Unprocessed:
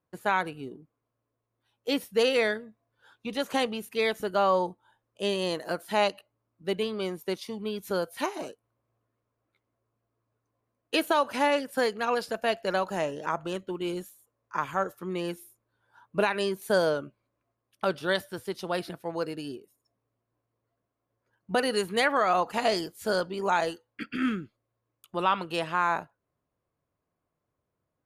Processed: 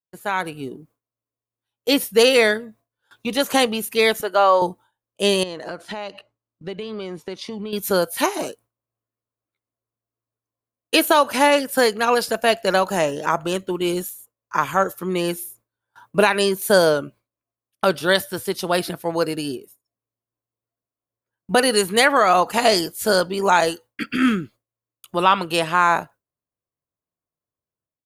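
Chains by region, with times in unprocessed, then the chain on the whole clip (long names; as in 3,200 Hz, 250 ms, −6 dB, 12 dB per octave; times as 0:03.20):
0:04.21–0:04.62: high-pass filter 460 Hz + high-shelf EQ 5,400 Hz −11.5 dB
0:05.43–0:07.73: downward compressor 10 to 1, threshold −36 dBFS + high-frequency loss of the air 120 metres
whole clip: noise gate with hold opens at −47 dBFS; high-shelf EQ 6,700 Hz +11 dB; automatic gain control gain up to 10 dB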